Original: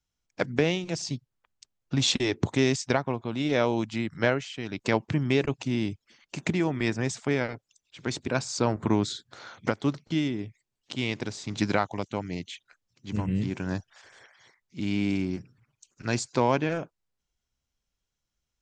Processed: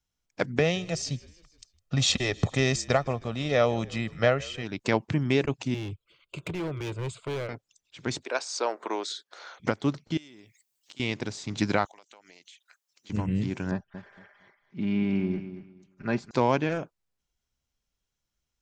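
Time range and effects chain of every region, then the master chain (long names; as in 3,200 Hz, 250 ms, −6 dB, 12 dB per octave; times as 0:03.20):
0:00.59–0:04.63: comb filter 1.6 ms, depth 58% + echo with shifted repeats 157 ms, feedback 60%, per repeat −53 Hz, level −23 dB
0:05.74–0:07.49: low-shelf EQ 230 Hz +5 dB + phaser with its sweep stopped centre 1,200 Hz, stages 8 + hard clipping −29 dBFS
0:08.23–0:09.60: high-pass filter 420 Hz 24 dB per octave + notch filter 7,300 Hz, Q 9.9
0:10.17–0:11.00: RIAA equalisation recording + downward compressor 5 to 1, threshold −48 dBFS
0:11.85–0:13.10: high-pass filter 640 Hz + high-shelf EQ 6,800 Hz +11 dB + downward compressor 12 to 1, threshold −48 dBFS
0:13.71–0:16.31: low-pass filter 2,000 Hz + comb filter 5 ms, depth 53% + repeating echo 230 ms, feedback 22%, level −11.5 dB
whole clip: no processing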